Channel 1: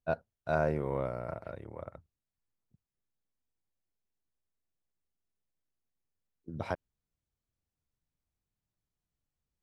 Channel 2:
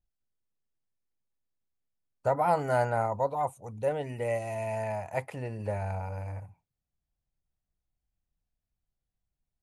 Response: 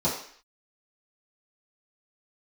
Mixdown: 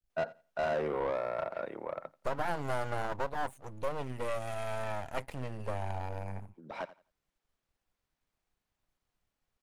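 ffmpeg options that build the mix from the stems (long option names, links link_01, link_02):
-filter_complex "[0:a]highpass=frequency=160:width=0.5412,highpass=frequency=160:width=1.3066,asplit=2[link_01][link_02];[link_02]highpass=frequency=720:poles=1,volume=22dB,asoftclip=type=tanh:threshold=-18dB[link_03];[link_01][link_03]amix=inputs=2:normalize=0,lowpass=frequency=2100:poles=1,volume=-6dB,adelay=100,volume=-4dB,asplit=2[link_04][link_05];[link_05]volume=-22.5dB[link_06];[1:a]aeval=exprs='max(val(0),0)':channel_layout=same,volume=1.5dB,asplit=2[link_07][link_08];[link_08]apad=whole_len=429029[link_09];[link_04][link_09]sidechaincompress=threshold=-56dB:ratio=4:attack=5:release=411[link_10];[link_06]aecho=0:1:86|172|258:1|0.21|0.0441[link_11];[link_10][link_07][link_11]amix=inputs=3:normalize=0,acompressor=threshold=-27dB:ratio=6"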